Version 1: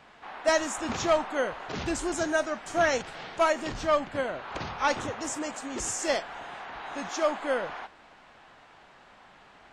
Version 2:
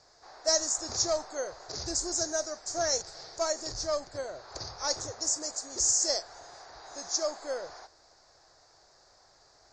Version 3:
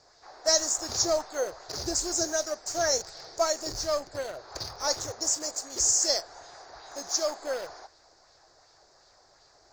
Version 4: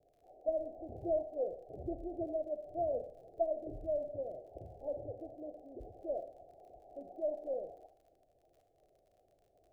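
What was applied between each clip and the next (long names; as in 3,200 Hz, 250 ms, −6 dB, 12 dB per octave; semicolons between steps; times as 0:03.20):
drawn EQ curve 110 Hz 0 dB, 220 Hz −16 dB, 350 Hz −3 dB, 640 Hz −1 dB, 910 Hz −7 dB, 1,800 Hz −8 dB, 3,000 Hz −18 dB, 4,700 Hz +15 dB, 7,000 Hz +13 dB, 11,000 Hz −17 dB; level −4 dB
in parallel at −11.5 dB: bit reduction 6 bits; on the sum: auto-filter bell 2.7 Hz 300–3,700 Hz +6 dB
Butterworth low-pass 740 Hz 96 dB per octave; surface crackle 44 per second −54 dBFS; four-comb reverb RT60 0.65 s, combs from 29 ms, DRR 9 dB; level −6 dB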